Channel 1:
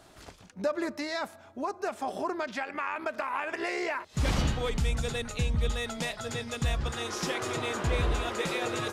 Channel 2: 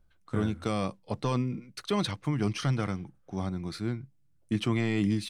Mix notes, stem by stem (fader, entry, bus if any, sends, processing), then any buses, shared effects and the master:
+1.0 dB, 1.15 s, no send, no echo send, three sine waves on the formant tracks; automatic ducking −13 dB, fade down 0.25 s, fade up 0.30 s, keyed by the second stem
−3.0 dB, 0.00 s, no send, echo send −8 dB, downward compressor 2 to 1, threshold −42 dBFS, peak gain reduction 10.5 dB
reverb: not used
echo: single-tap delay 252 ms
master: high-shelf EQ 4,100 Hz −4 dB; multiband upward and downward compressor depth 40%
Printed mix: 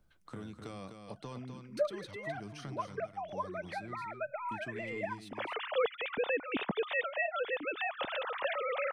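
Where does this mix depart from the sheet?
stem 2 −3.0 dB → −10.5 dB
master: missing high-shelf EQ 4,100 Hz −4 dB

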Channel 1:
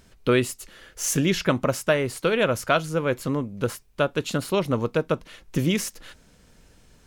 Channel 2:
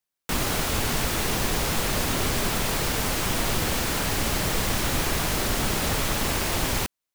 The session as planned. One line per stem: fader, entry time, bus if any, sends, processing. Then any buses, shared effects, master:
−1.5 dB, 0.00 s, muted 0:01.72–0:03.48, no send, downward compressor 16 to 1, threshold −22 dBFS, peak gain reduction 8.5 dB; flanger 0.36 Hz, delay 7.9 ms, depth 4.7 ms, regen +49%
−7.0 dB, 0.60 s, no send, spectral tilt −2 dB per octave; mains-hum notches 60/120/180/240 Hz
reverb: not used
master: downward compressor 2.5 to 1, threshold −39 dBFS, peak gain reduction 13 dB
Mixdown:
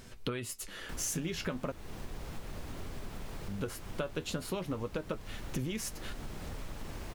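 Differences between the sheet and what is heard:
stem 1 −1.5 dB → +8.0 dB
stem 2 −7.0 dB → −16.5 dB

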